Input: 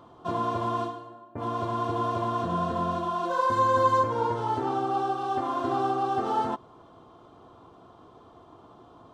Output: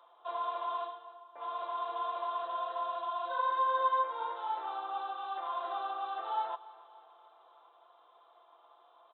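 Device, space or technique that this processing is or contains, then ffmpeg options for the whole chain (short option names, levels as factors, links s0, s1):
musical greeting card: -filter_complex "[0:a]aresample=8000,aresample=44100,highpass=f=620:w=0.5412,highpass=f=620:w=1.3066,equalizer=f=3800:t=o:w=0.22:g=11.5,asettb=1/sr,asplit=3[s0][s1][s2];[s0]atrim=end=3.814[s3];[s1]atrim=start=3.81:end=4.21,asetpts=PTS-STARTPTS,afade=t=in:d=0.004:c=qsin,afade=t=out:st=0.396:d=0.004:c=qsin,highpass=250[s4];[s2]atrim=start=4.206[s5];[s3][s4]acrossfade=d=0.004:c1=hsin:c2=qsin[s6];[s6][s5]acrossfade=d=0.004:c1=qsin:c2=hsin,aecho=1:1:5.9:0.34,aecho=1:1:288|576|864|1152|1440:0.106|0.0593|0.0332|0.0186|0.0104,volume=0.422"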